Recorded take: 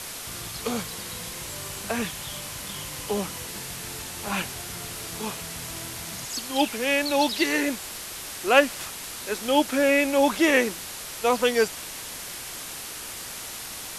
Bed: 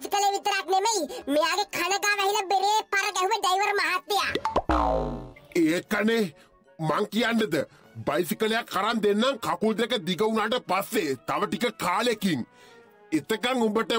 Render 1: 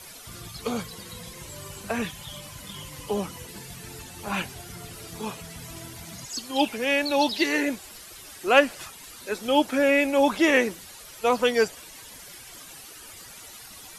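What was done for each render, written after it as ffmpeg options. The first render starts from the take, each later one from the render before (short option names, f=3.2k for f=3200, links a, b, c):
-af "afftdn=nr=12:nf=-37"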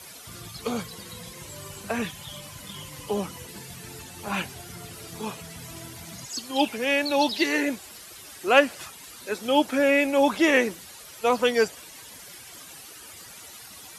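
-af "highpass=65"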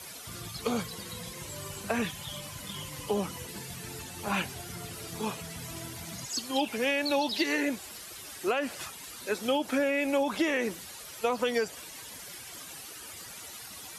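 -af "alimiter=limit=-13dB:level=0:latency=1:release=69,acompressor=threshold=-24dB:ratio=6"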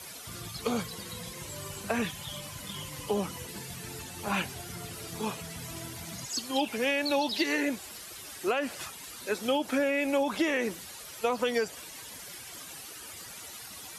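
-af anull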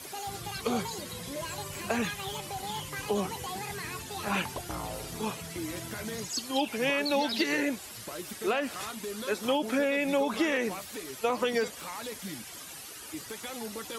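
-filter_complex "[1:a]volume=-15.5dB[a];[0:a][a]amix=inputs=2:normalize=0"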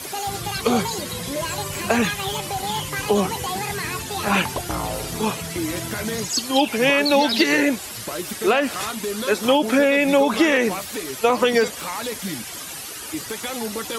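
-af "volume=10.5dB"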